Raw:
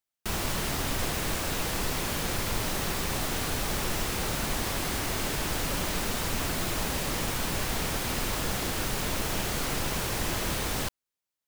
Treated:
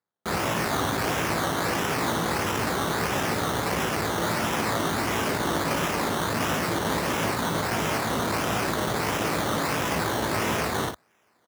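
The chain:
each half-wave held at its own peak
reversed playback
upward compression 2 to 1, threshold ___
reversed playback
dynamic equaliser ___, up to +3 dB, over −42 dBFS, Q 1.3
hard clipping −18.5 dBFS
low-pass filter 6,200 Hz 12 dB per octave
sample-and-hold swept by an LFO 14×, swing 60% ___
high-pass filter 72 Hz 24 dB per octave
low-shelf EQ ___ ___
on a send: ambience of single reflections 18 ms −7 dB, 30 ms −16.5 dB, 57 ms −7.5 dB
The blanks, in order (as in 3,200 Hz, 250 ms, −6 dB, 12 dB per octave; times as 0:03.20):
−35 dBFS, 1,200 Hz, 1.5 Hz, 120 Hz, −9 dB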